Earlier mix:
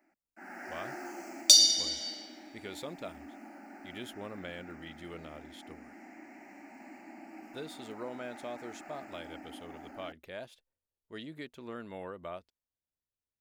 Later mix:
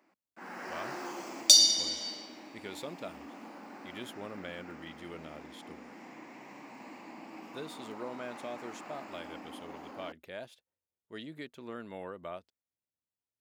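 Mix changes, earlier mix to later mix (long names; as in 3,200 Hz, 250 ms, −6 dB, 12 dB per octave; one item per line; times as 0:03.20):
first sound: remove phaser with its sweep stopped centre 710 Hz, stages 8
master: add high-pass filter 94 Hz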